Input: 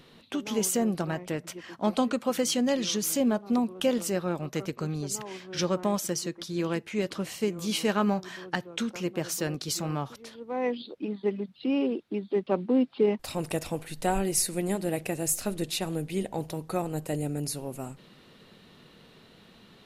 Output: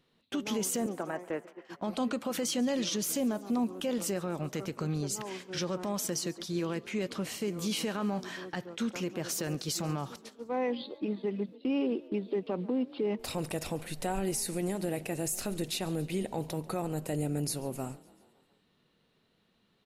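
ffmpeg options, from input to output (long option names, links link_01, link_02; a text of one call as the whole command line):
ffmpeg -i in.wav -filter_complex "[0:a]asettb=1/sr,asplit=3[link_01][link_02][link_03];[link_01]atrim=end=0.864[link_04];[link_02]atrim=start=0.86:end=1.65,asetpts=PTS-STARTPTS,afade=type=in:duration=0.004:curve=qsin,afade=type=out:start_time=0.786:duration=0.004:curve=qsin,acrossover=split=290 2300:gain=0.126 1 0.1[link_05][link_06][link_07];[link_05][link_06][link_07]amix=inputs=3:normalize=0[link_08];[link_03]atrim=start=1.646[link_09];[link_04][link_08]acrossfade=duration=0.004:curve1=hsin:curve2=qsin[link_10];[link_10][link_09]acrossfade=duration=0.004:curve1=qsin:curve2=hsin,agate=range=-17dB:threshold=-43dB:ratio=16:detection=peak,alimiter=limit=-23.5dB:level=0:latency=1:release=53,asplit=2[link_11][link_12];[link_12]asplit=5[link_13][link_14][link_15][link_16][link_17];[link_13]adelay=140,afreqshift=34,volume=-22dB[link_18];[link_14]adelay=280,afreqshift=68,volume=-26.2dB[link_19];[link_15]adelay=420,afreqshift=102,volume=-30.3dB[link_20];[link_16]adelay=560,afreqshift=136,volume=-34.5dB[link_21];[link_17]adelay=700,afreqshift=170,volume=-38.6dB[link_22];[link_18][link_19][link_20][link_21][link_22]amix=inputs=5:normalize=0[link_23];[link_11][link_23]amix=inputs=2:normalize=0" out.wav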